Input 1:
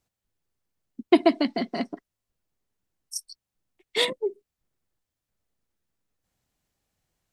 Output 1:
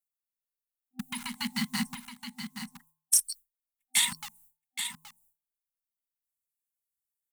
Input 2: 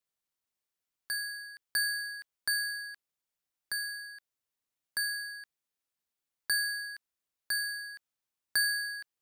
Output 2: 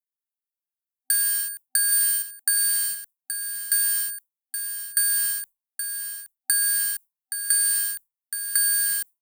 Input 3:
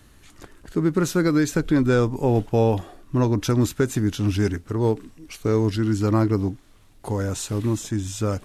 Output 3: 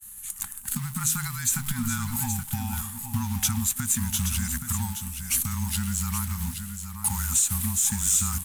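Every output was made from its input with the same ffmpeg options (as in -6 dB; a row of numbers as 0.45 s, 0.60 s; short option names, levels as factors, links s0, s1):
-filter_complex "[0:a]acrossover=split=7100[s0][s1];[s1]acompressor=threshold=0.00251:ratio=4:attack=1:release=60[s2];[s0][s2]amix=inputs=2:normalize=0,agate=range=0.0224:threshold=0.00501:ratio=3:detection=peak,aexciter=amount=10.3:drive=6.8:freq=7400,bandreject=f=179.5:t=h:w=4,bandreject=f=359:t=h:w=4,bandreject=f=538.5:t=h:w=4,bandreject=f=718:t=h:w=4,bandreject=f=897.5:t=h:w=4,bandreject=f=1077:t=h:w=4,asplit=2[s3][s4];[s4]acrusher=bits=4:mix=0:aa=0.000001,volume=0.473[s5];[s3][s5]amix=inputs=2:normalize=0,alimiter=limit=0.237:level=0:latency=1:release=164,acompressor=threshold=0.0708:ratio=6,afftfilt=real='re*(1-between(b*sr/4096,270,790))':imag='im*(1-between(b*sr/4096,270,790))':win_size=4096:overlap=0.75,asplit=2[s6][s7];[s7]aecho=0:1:823:0.376[s8];[s6][s8]amix=inputs=2:normalize=0,afreqshift=-21,highshelf=f=2200:g=7.5,volume=0.841"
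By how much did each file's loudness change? -4.0 LU, +11.0 LU, -3.5 LU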